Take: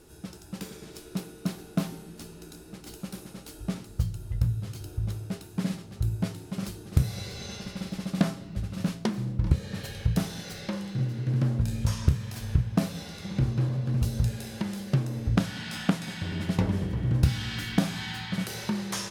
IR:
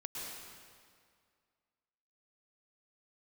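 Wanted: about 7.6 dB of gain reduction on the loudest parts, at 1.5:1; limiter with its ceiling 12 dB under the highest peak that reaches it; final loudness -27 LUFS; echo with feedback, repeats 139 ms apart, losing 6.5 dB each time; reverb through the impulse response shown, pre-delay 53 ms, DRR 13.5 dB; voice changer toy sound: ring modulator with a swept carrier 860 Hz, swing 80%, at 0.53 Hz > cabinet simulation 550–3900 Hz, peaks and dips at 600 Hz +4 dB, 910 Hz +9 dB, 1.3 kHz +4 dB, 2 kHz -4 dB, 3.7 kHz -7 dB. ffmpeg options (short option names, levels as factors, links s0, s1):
-filter_complex "[0:a]acompressor=threshold=0.0126:ratio=1.5,alimiter=level_in=1.19:limit=0.0631:level=0:latency=1,volume=0.841,aecho=1:1:139|278|417|556|695|834:0.473|0.222|0.105|0.0491|0.0231|0.0109,asplit=2[s0][s1];[1:a]atrim=start_sample=2205,adelay=53[s2];[s1][s2]afir=irnorm=-1:irlink=0,volume=0.211[s3];[s0][s3]amix=inputs=2:normalize=0,aeval=exprs='val(0)*sin(2*PI*860*n/s+860*0.8/0.53*sin(2*PI*0.53*n/s))':c=same,highpass=550,equalizer=f=600:t=q:w=4:g=4,equalizer=f=910:t=q:w=4:g=9,equalizer=f=1300:t=q:w=4:g=4,equalizer=f=2000:t=q:w=4:g=-4,equalizer=f=3700:t=q:w=4:g=-7,lowpass=f=3900:w=0.5412,lowpass=f=3900:w=1.3066,volume=2.66"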